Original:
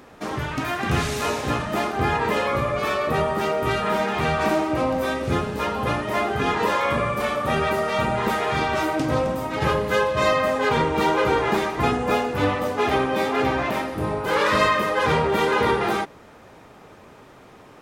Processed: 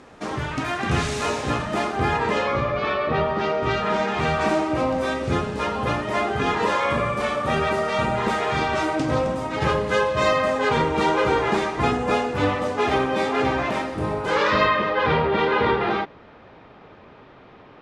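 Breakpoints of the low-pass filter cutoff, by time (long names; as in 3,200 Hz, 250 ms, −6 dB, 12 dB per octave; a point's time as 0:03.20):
low-pass filter 24 dB per octave
0:02.15 9,500 Hz
0:02.96 3,900 Hz
0:04.39 9,000 Hz
0:14.25 9,000 Hz
0:14.68 4,100 Hz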